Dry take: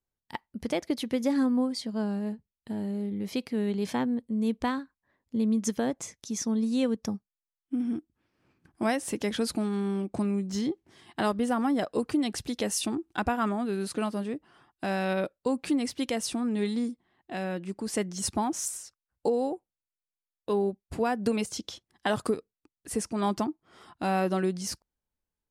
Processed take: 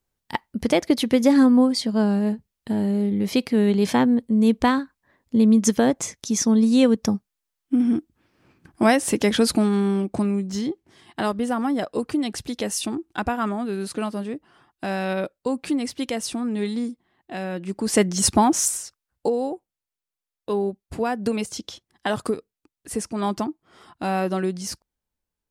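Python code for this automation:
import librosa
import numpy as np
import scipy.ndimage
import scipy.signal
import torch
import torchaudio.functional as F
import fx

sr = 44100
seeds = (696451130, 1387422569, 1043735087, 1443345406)

y = fx.gain(x, sr, db=fx.line((9.6, 10.0), (10.68, 3.0), (17.51, 3.0), (18.0, 11.5), (18.58, 11.5), (19.38, 3.0)))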